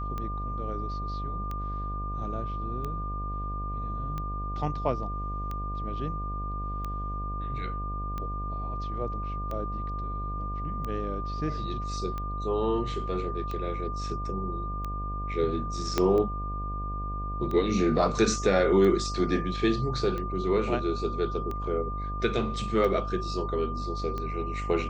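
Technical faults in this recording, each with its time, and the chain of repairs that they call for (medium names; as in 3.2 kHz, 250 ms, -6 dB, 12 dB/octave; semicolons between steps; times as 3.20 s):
buzz 50 Hz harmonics 15 -34 dBFS
tick 45 rpm -22 dBFS
whine 1.2 kHz -35 dBFS
15.98 s: pop -10 dBFS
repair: de-click; band-stop 1.2 kHz, Q 30; de-hum 50 Hz, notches 15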